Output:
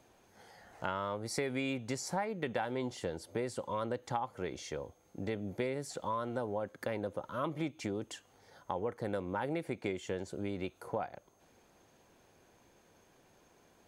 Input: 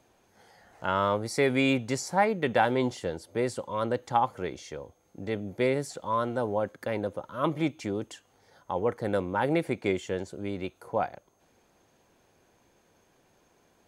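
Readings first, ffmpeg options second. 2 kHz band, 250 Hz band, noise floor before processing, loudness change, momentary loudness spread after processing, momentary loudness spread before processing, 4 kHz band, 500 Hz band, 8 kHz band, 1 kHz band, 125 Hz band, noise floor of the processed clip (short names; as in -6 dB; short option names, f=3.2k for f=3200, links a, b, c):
-9.5 dB, -8.0 dB, -66 dBFS, -9.0 dB, 7 LU, 11 LU, -7.5 dB, -8.5 dB, -4.5 dB, -9.5 dB, -7.5 dB, -67 dBFS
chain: -af "acompressor=threshold=-33dB:ratio=5"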